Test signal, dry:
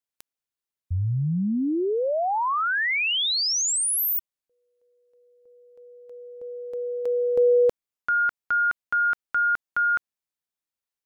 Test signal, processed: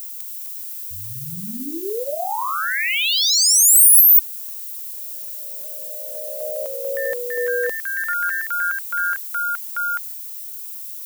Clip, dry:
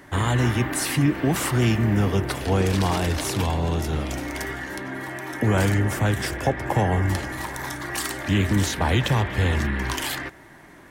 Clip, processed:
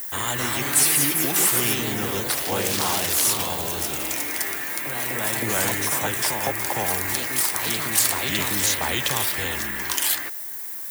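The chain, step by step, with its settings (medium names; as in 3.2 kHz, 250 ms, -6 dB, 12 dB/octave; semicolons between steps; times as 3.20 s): added noise blue -48 dBFS; RIAA curve recording; ever faster or slower copies 276 ms, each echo +2 st, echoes 2; trim -2.5 dB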